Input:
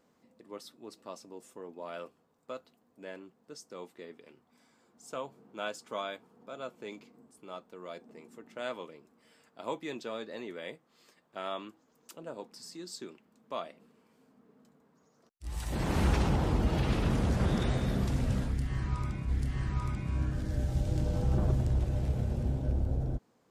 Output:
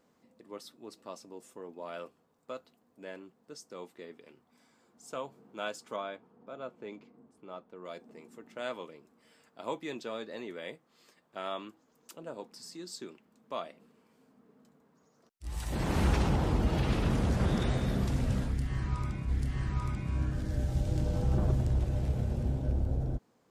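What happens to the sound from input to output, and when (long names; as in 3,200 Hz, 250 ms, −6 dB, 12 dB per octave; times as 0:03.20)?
0:05.96–0:07.85: low-pass filter 1,700 Hz 6 dB per octave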